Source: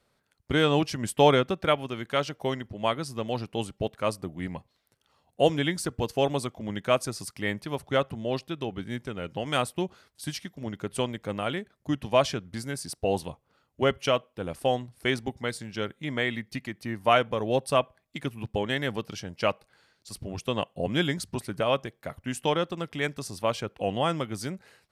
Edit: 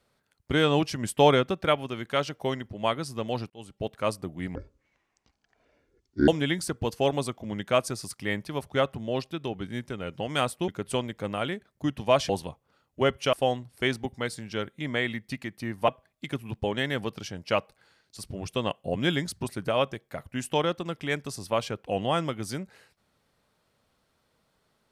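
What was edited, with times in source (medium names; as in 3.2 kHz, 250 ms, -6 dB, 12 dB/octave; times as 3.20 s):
3.50–3.96 s: fade in
4.55–5.45 s: speed 52%
9.85–10.73 s: delete
12.34–13.10 s: delete
14.14–14.56 s: delete
17.11–17.80 s: delete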